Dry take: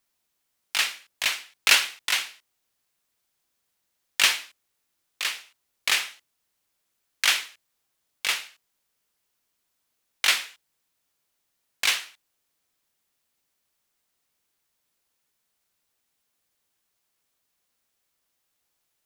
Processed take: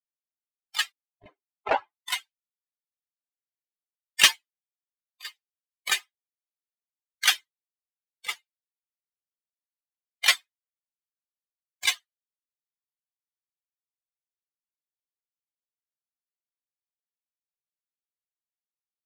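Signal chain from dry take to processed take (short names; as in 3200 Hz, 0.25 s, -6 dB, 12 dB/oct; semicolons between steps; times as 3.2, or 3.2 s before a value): per-bin expansion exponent 3; 0.91–2.03 synth low-pass 240 Hz -> 1100 Hz, resonance Q 3.8; gain +8 dB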